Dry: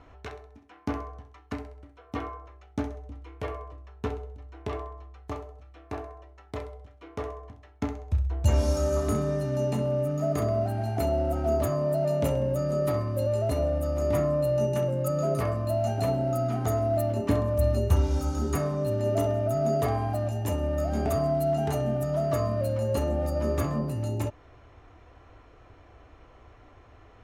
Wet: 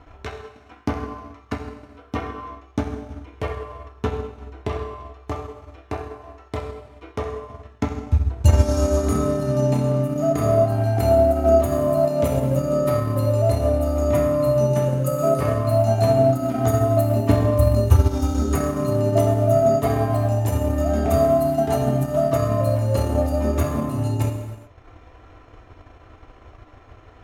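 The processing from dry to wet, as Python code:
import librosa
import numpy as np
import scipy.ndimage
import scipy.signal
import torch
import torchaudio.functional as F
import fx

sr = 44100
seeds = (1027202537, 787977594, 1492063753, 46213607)

y = fx.rev_gated(x, sr, seeds[0], gate_ms=450, shape='falling', drr_db=0.5)
y = fx.transient(y, sr, attack_db=4, sustain_db=-6)
y = y * 10.0 ** (3.5 / 20.0)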